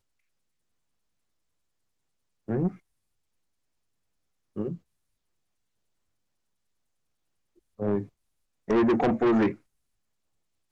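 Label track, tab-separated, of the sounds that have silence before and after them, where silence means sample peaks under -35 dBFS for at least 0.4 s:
2.480000	2.690000	sound
4.560000	4.750000	sound
7.800000	8.030000	sound
8.680000	9.540000	sound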